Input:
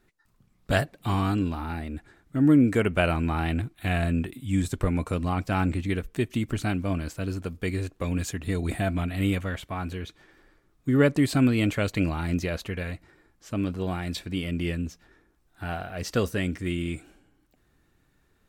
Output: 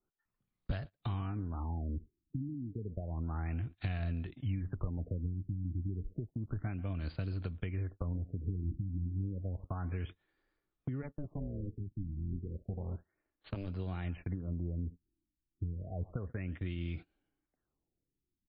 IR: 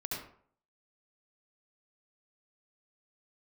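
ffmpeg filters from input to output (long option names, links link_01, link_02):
-filter_complex "[0:a]asettb=1/sr,asplit=3[link_01][link_02][link_03];[link_01]atrim=end=11.024[link_04];[link_02]atrim=start=11.02:end=13.68,asetpts=PTS-STARTPTS,afade=type=in:duration=0.004:curve=qsin,afade=type=out:start_time=2.656:duration=0.004:curve=qsin,tremolo=f=300:d=0.857[link_05];[link_03]atrim=start=13.676[link_06];[link_04][link_05]acrossfade=duration=0.004:curve1=hsin:curve2=qsin[link_07];[link_07][link_06]acrossfade=duration=0.004:curve1=qsin:curve2=hsin,acompressor=threshold=-37dB:ratio=10,highshelf=frequency=6800:gain=3,acrossover=split=140[link_08][link_09];[link_09]acompressor=threshold=-58dB:ratio=3[link_10];[link_08][link_10]amix=inputs=2:normalize=0,bass=frequency=250:gain=-4,treble=frequency=4000:gain=3,aecho=1:1:139:0.112,agate=range=-30dB:threshold=-54dB:ratio=16:detection=peak,afftfilt=real='re*lt(b*sr/1024,340*pow(5100/340,0.5+0.5*sin(2*PI*0.31*pts/sr)))':imag='im*lt(b*sr/1024,340*pow(5100/340,0.5+0.5*sin(2*PI*0.31*pts/sr)))':win_size=1024:overlap=0.75,volume=11.5dB"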